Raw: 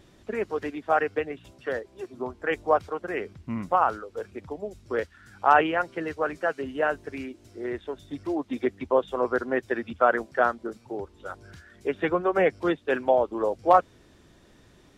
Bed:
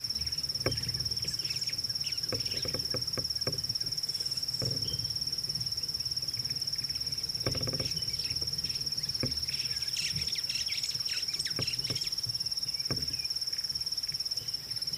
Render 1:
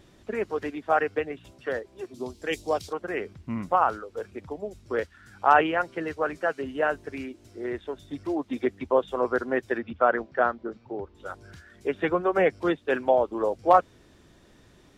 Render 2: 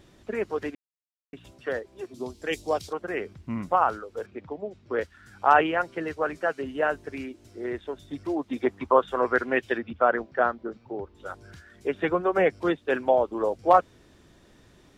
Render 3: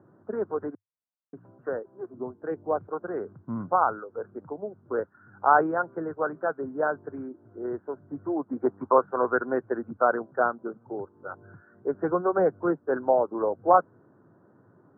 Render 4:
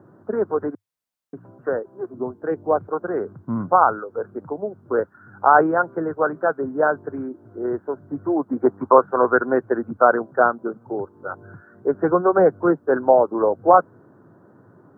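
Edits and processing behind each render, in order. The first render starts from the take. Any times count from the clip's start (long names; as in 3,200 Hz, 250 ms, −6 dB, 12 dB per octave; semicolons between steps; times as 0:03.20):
0:02.14–0:02.93: drawn EQ curve 320 Hz 0 dB, 1,400 Hz −10 dB, 4,300 Hz +14 dB; 0:09.78–0:11.15: high-frequency loss of the air 200 metres
0:00.75–0:01.33: silence; 0:04.26–0:05.01: band-pass filter 100–3,500 Hz; 0:08.64–0:09.75: parametric band 850 Hz → 3,300 Hz +12.5 dB
Chebyshev band-pass filter 100–1,500 Hz, order 5
level +7.5 dB; brickwall limiter −1 dBFS, peak gain reduction 3 dB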